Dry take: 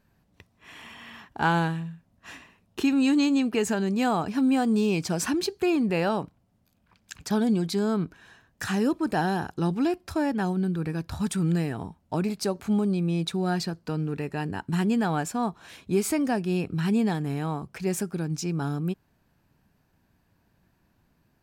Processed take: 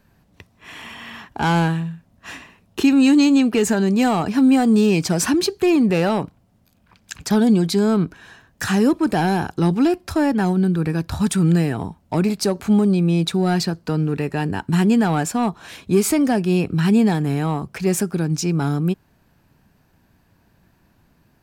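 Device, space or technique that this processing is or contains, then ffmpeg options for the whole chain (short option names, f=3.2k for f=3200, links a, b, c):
one-band saturation: -filter_complex "[0:a]acrossover=split=370|4800[a][b][c];[b]asoftclip=type=tanh:threshold=-25dB[d];[a][d][c]amix=inputs=3:normalize=0,volume=8.5dB"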